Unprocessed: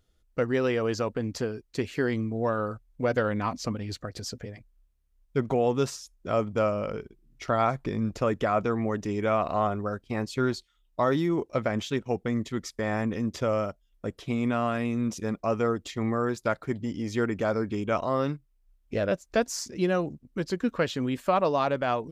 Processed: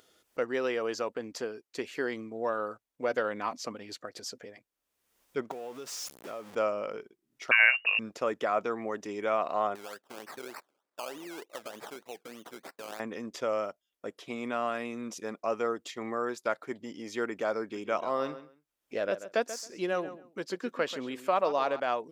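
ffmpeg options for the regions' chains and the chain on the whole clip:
-filter_complex "[0:a]asettb=1/sr,asplit=3[a][b][c];[a]atrim=end=5.514[d];[b]atrim=start=5.51:end=6.55,asetpts=PTS-STARTPTS,afade=t=in:d=0.004:c=qsin,afade=t=out:st=1.036:d=0.004:c=qsin,aeval=exprs='val(0)+0.5*0.0237*sgn(val(0))':c=same,acompressor=threshold=-33dB:ratio=6:attack=3.2:release=140:knee=1:detection=peak,acrusher=bits=8:mode=log:mix=0:aa=0.000001[e];[c]atrim=start=6.546[f];[d][e]acrossfade=d=0.004:c1=hsin:c2=qsin[g];[g][f]acrossfade=d=0.004:c1=qsin:c2=hsin,asettb=1/sr,asplit=3[h][i][j];[h]atrim=end=7.514[k];[i]atrim=start=7.51:end=7.99,asetpts=PTS-STARTPTS,afade=t=in:d=0.004:c=qsin,afade=t=out:st=0.476:d=0.004:c=qsin,acontrast=41,lowpass=f=2.5k:t=q:w=0.5098,lowpass=f=2.5k:t=q:w=0.6013,lowpass=f=2.5k:t=q:w=0.9,lowpass=f=2.5k:t=q:w=2.563,afreqshift=-2900[l];[j]atrim=start=7.986[m];[k][l]acrossfade=d=0.004:c1=hsin:c2=qsin[n];[n][m]acrossfade=d=0.004:c1=qsin:c2=hsin,asettb=1/sr,asplit=3[o][p][q];[o]atrim=end=9.754[r];[p]atrim=start=9.75:end=13,asetpts=PTS-STARTPTS,afade=t=in:d=0.004:c=qsin,afade=t=out:st=3.246:d=0.004:c=qsin,lowshelf=f=280:g=-11.5,acompressor=threshold=-35dB:ratio=3:attack=3.2:release=140:knee=1:detection=peak,acrusher=samples=19:mix=1:aa=0.000001:lfo=1:lforange=11.4:lforate=3.3[s];[q]atrim=start=12.996[t];[r][s]acrossfade=d=0.004:c1=hsin:c2=qsin[u];[u][t]acrossfade=d=0.004:c1=qsin:c2=hsin,asettb=1/sr,asplit=3[v][w][x];[v]atrim=end=17.624[y];[w]atrim=start=17.62:end=21.8,asetpts=PTS-STARTPTS,afade=t=in:d=0.004:c=qsin,afade=t=out:st=4.176:d=0.004:c=qsin,deesser=0.75,asplit=2[z][aa];[aa]adelay=136,lowpass=f=4.1k:p=1,volume=-13dB,asplit=2[ab][ac];[ac]adelay=136,lowpass=f=4.1k:p=1,volume=0.19[ad];[z][ab][ad]amix=inputs=3:normalize=0,atrim=end_sample=184338[ae];[x]atrim=start=21.796[af];[y][ae]acrossfade=d=0.004:c1=hsin:c2=qsin[ag];[ag][af]acrossfade=d=0.004:c1=qsin:c2=hsin,highpass=370,bandreject=f=4.1k:w=30,acompressor=mode=upward:threshold=-49dB:ratio=2.5,volume=-2.5dB"

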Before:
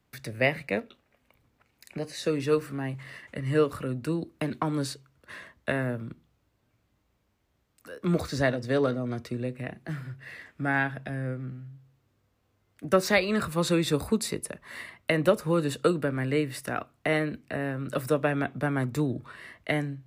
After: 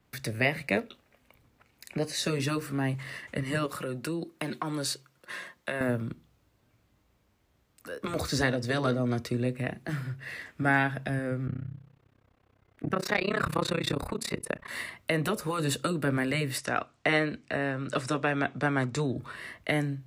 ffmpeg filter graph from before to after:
-filter_complex "[0:a]asettb=1/sr,asplit=3[a][b][c];[a]atrim=end=3.664[d];[b]atrim=start=3.66:end=5.81,asetpts=PTS-STARTPTS,afade=t=in:d=0.004:c=qsin,afade=t=out:st=2.146:d=0.004:c=qsin,highpass=f=290:p=1,aecho=1:1:5.6:0.38,atrim=end_sample=94815,acompressor=threshold=-33dB:ratio=3:attack=3.2:release=140:knee=1:detection=peak[e];[c]atrim=start=5.806[f];[d][e]acrossfade=d=0.004:c1=hsin:c2=qsin[g];[g][f]acrossfade=d=0.004:c1=qsin:c2=hsin,asettb=1/sr,asplit=3[h][i][j];[h]atrim=end=11.474[k];[i]atrim=start=11.47:end=14.68,asetpts=PTS-STARTPTS,afade=t=in:d=0.004:c=qsin,afade=t=out:st=3.206:d=0.004:c=qsin,tremolo=f=32:d=0.974,bass=f=250:g=-2,treble=f=4k:g=-13,acontrast=87[l];[j]atrim=start=14.676[m];[k][l]acrossfade=d=0.004:c1=hsin:c2=qsin[n];[n][m]acrossfade=d=0.004:c1=qsin:c2=hsin,asettb=1/sr,asplit=3[o][p][q];[o]atrim=end=16.584[r];[p]atrim=start=16.58:end=19.17,asetpts=PTS-STARTPTS,afade=t=in:d=0.004:c=qsin,afade=t=out:st=2.586:d=0.004:c=qsin,lowpass=f=7.8k:w=0.5412,lowpass=f=7.8k:w=1.3066,lowshelf=f=390:g=-6[s];[q]atrim=start=19.166[t];[r][s]acrossfade=d=0.004:c1=hsin:c2=qsin[u];[u][t]acrossfade=d=0.004:c1=qsin:c2=hsin,alimiter=limit=-16.5dB:level=0:latency=1:release=265,afftfilt=real='re*lt(hypot(re,im),0.316)':imag='im*lt(hypot(re,im),0.316)':win_size=1024:overlap=0.75,adynamicequalizer=threshold=0.00447:dfrequency=3500:dqfactor=0.7:tfrequency=3500:tqfactor=0.7:attack=5:release=100:ratio=0.375:range=2:mode=boostabove:tftype=highshelf,volume=3.5dB"

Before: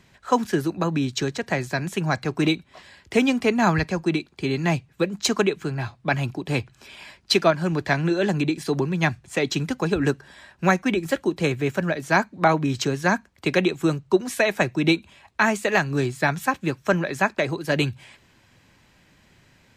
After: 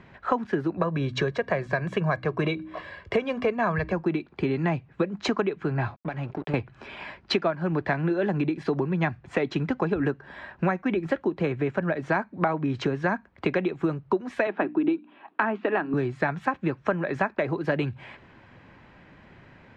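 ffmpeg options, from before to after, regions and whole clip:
-filter_complex "[0:a]asettb=1/sr,asplit=3[a][b][c];[a]atrim=end=0.774[d];[b]atrim=start=0.77:end=3.93,asetpts=PTS-STARTPTS,afade=t=in:d=0.004:c=qsin,afade=t=out:st=3.156:d=0.004:c=qsin,aecho=1:1:1.8:0.62,atrim=end_sample=139356,bandreject=f=63:t=h:w=4,bandreject=f=126:t=h:w=4,bandreject=f=189:t=h:w=4,bandreject=f=252:t=h:w=4,bandreject=f=315:t=h:w=4[e];[c]atrim=start=3.926[f];[d][e]acrossfade=d=0.004:c1=hsin:c2=qsin[g];[g][f]acrossfade=d=0.004:c1=qsin:c2=hsin,asettb=1/sr,asplit=3[h][i][j];[h]atrim=end=5.964[k];[i]atrim=start=5.96:end=6.54,asetpts=PTS-STARTPTS,afade=t=in:d=0.004:c=qsin,afade=t=out:st=0.576:d=0.004:c=qsin,acompressor=threshold=-33dB:ratio=16:attack=3.2:release=140:knee=1:detection=peak,aecho=1:1:6.8:0.33,atrim=end_sample=25578,aeval=exprs='sgn(val(0))*max(abs(val(0))-0.00531,0)':c=same[l];[j]atrim=start=6.536[m];[k][l]acrossfade=d=0.004:c1=hsin:c2=qsin[n];[n][m]acrossfade=d=0.004:c1=qsin:c2=hsin,asettb=1/sr,asplit=3[o][p][q];[o]atrim=end=14.474[r];[p]atrim=start=14.47:end=15.94,asetpts=PTS-STARTPTS,afade=t=in:d=0.004:c=qsin,afade=t=out:st=1.466:d=0.004:c=qsin,highpass=f=220:w=0.5412,highpass=f=220:w=1.3066,equalizer=f=300:t=q:w=4:g=10,equalizer=f=540:t=q:w=4:g=-5,equalizer=f=2.1k:t=q:w=4:g=-8,lowpass=f=3.4k:w=0.5412,lowpass=f=3.4k:w=1.3066,bandreject=f=60:t=h:w=6,bandreject=f=120:t=h:w=6,bandreject=f=180:t=h:w=6,bandreject=f=240:t=h:w=6,bandreject=f=300:t=h:w=6[s];[q]atrim=start=15.936[t];[r][s]acrossfade=d=0.004:c1=hsin:c2=qsin[u];[u][t]acrossfade=d=0.004:c1=qsin:c2=hsin,lowpass=1.8k,lowshelf=f=160:g=-5,acompressor=threshold=-31dB:ratio=6,volume=8.5dB"

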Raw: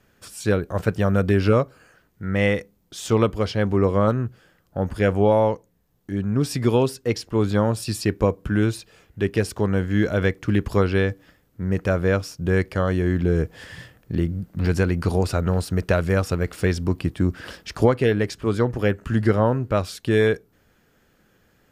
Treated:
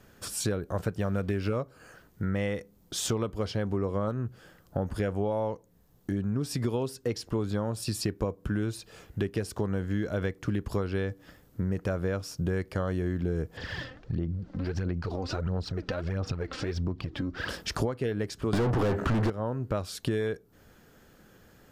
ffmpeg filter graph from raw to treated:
-filter_complex "[0:a]asettb=1/sr,asplit=3[a][b][c];[a]atrim=end=1.014[d];[b]atrim=start=1.01:end=1.57,asetpts=PTS-STARTPTS,afade=t=in:d=0.004:c=qsin,afade=t=out:st=0.556:d=0.004:c=qsin,equalizer=f=2.3k:w=2.5:g=5,aeval=exprs='sgn(val(0))*max(abs(val(0))-0.00531,0)':c=same[e];[c]atrim=start=1.566[f];[d][e]acrossfade=d=0.004:c1=hsin:c2=qsin[g];[g][f]acrossfade=d=0.004:c1=qsin:c2=hsin,asettb=1/sr,asplit=3[h][i][j];[h]atrim=end=13.574[k];[i]atrim=start=13.57:end=17.49,asetpts=PTS-STARTPTS,afade=t=in:d=0.004:c=qsin,afade=t=out:st=3.916:d=0.004:c=qsin,lowpass=f=5.2k:w=0.5412,lowpass=f=5.2k:w=1.3066,acompressor=threshold=-32dB:ratio=5:attack=3.2:release=140:knee=1:detection=peak,aphaser=in_gain=1:out_gain=1:delay=3.9:decay=0.59:speed=1.5:type=sinusoidal[l];[j]atrim=start=17.486[m];[k][l]acrossfade=d=0.004:c1=hsin:c2=qsin[n];[n][m]acrossfade=d=0.004:c1=qsin:c2=hsin,asettb=1/sr,asplit=3[o][p][q];[o]atrim=end=18.534[r];[p]atrim=start=18.53:end=19.3,asetpts=PTS-STARTPTS,afade=t=in:d=0.004:c=qsin,afade=t=out:st=0.766:d=0.004:c=qsin,lowshelf=f=220:g=10.5,asplit=2[s][t];[t]highpass=f=720:p=1,volume=43dB,asoftclip=type=tanh:threshold=-0.5dB[u];[s][u]amix=inputs=2:normalize=0,lowpass=f=1.5k:p=1,volume=-6dB[v];[q]atrim=start=19.296[w];[r][v]acrossfade=d=0.004:c1=hsin:c2=qsin[x];[x][w]acrossfade=d=0.004:c1=qsin:c2=hsin,acompressor=threshold=-32dB:ratio=6,equalizer=f=2.3k:t=o:w=1:g=-4,volume=4.5dB"

